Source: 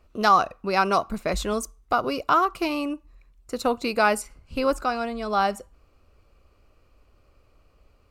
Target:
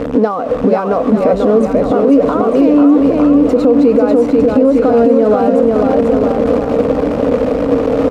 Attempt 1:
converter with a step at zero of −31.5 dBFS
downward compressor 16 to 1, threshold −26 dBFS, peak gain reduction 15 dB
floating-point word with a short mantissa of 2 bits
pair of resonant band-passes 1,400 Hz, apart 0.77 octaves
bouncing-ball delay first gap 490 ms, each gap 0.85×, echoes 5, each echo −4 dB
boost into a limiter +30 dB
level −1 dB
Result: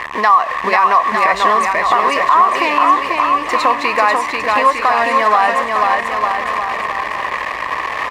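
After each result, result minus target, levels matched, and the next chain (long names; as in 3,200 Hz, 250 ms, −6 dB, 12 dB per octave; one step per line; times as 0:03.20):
1,000 Hz band +12.0 dB; converter with a step at zero: distortion −6 dB
converter with a step at zero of −31.5 dBFS
downward compressor 16 to 1, threshold −26 dBFS, peak gain reduction 15 dB
floating-point word with a short mantissa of 2 bits
pair of resonant band-passes 360 Hz, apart 0.77 octaves
bouncing-ball delay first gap 490 ms, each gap 0.85×, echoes 5, each echo −4 dB
boost into a limiter +30 dB
level −1 dB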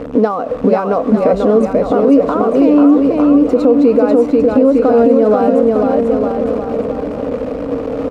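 converter with a step at zero: distortion −6 dB
converter with a step at zero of −24.5 dBFS
downward compressor 16 to 1, threshold −26 dBFS, peak gain reduction 15 dB
floating-point word with a short mantissa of 2 bits
pair of resonant band-passes 360 Hz, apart 0.77 octaves
bouncing-ball delay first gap 490 ms, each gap 0.85×, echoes 5, each echo −4 dB
boost into a limiter +30 dB
level −1 dB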